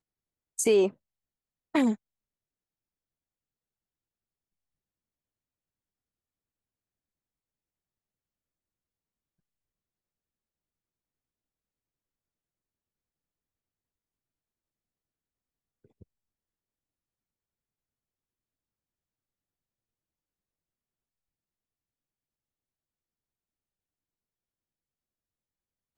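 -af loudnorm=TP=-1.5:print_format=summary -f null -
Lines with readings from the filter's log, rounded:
Input Integrated:    -26.7 LUFS
Input True Peak:     -12.9 dBTP
Input LRA:             5.1 LU
Input Threshold:     -38.5 LUFS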